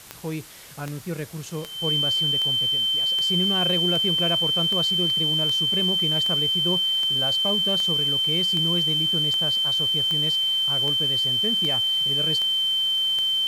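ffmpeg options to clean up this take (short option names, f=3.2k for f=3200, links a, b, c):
-af "adeclick=t=4,bandreject=f=3.1k:w=30,afwtdn=0.0063"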